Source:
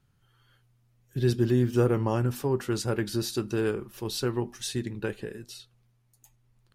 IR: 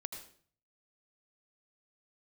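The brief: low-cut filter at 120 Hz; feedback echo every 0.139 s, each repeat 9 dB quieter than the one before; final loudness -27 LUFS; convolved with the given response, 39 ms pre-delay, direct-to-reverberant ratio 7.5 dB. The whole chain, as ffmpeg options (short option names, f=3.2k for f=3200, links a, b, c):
-filter_complex "[0:a]highpass=120,aecho=1:1:139|278|417|556:0.355|0.124|0.0435|0.0152,asplit=2[a][b];[1:a]atrim=start_sample=2205,adelay=39[c];[b][c]afir=irnorm=-1:irlink=0,volume=-6dB[d];[a][d]amix=inputs=2:normalize=0,volume=1dB"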